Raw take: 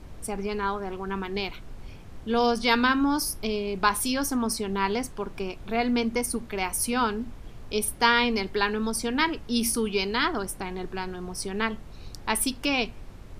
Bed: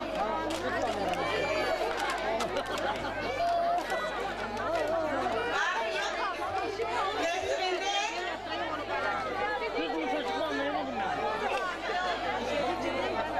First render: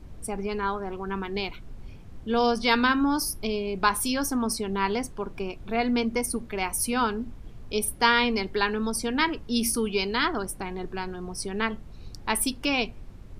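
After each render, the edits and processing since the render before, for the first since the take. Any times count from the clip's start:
broadband denoise 6 dB, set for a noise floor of −44 dBFS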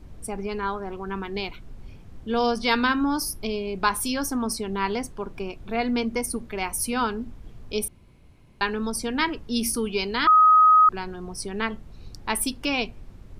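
0:07.88–0:08.61: fill with room tone
0:10.27–0:10.89: beep over 1,260 Hz −11.5 dBFS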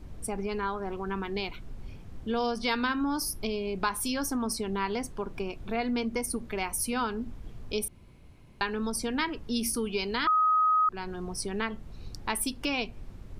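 downward compressor 2 to 1, threshold −30 dBFS, peak gain reduction 9 dB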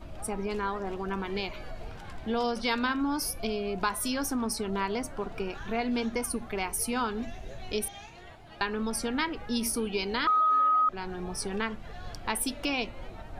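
mix in bed −16.5 dB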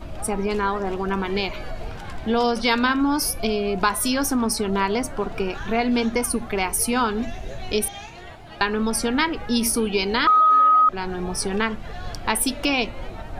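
level +8.5 dB

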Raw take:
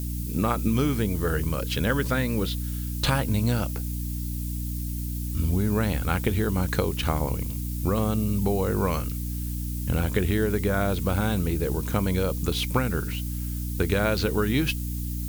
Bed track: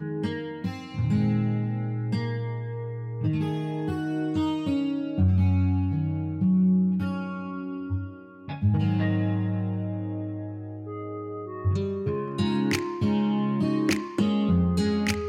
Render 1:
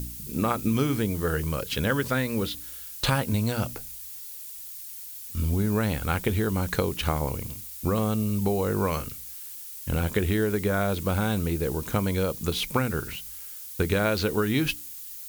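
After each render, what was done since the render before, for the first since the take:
hum removal 60 Hz, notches 5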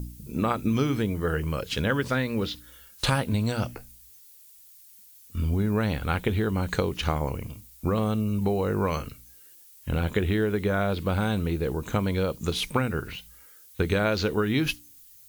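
noise reduction from a noise print 12 dB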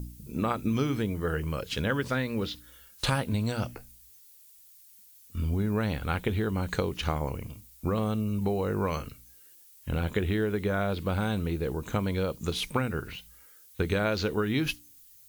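level −3 dB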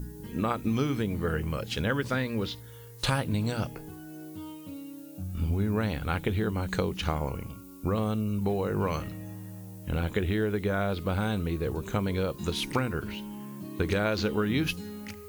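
mix in bed track −15.5 dB

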